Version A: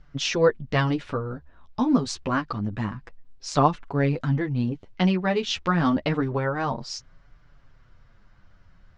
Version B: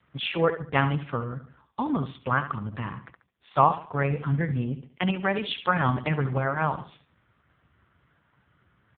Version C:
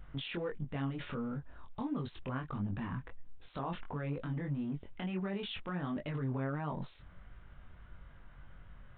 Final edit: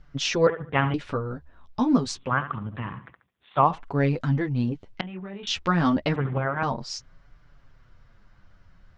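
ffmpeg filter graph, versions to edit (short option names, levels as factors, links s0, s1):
-filter_complex "[1:a]asplit=3[s0][s1][s2];[0:a]asplit=5[s3][s4][s5][s6][s7];[s3]atrim=end=0.472[s8];[s0]atrim=start=0.468:end=0.942[s9];[s4]atrim=start=0.938:end=2.33[s10];[s1]atrim=start=2.09:end=3.83[s11];[s5]atrim=start=3.59:end=5.012[s12];[2:a]atrim=start=5.008:end=5.472[s13];[s6]atrim=start=5.468:end=6.162[s14];[s2]atrim=start=6.158:end=6.632[s15];[s7]atrim=start=6.628[s16];[s8][s9]acrossfade=d=0.004:c1=hsin:c2=hsin[s17];[s17][s10]acrossfade=d=0.004:c1=hsin:c2=hsin[s18];[s18][s11]acrossfade=d=0.24:c1=tri:c2=tri[s19];[s19][s12]acrossfade=d=0.24:c1=tri:c2=tri[s20];[s20][s13]acrossfade=d=0.004:c1=hsin:c2=hsin[s21];[s21][s14]acrossfade=d=0.004:c1=hsin:c2=hsin[s22];[s22][s15]acrossfade=d=0.004:c1=hsin:c2=hsin[s23];[s23][s16]acrossfade=d=0.004:c1=hsin:c2=hsin"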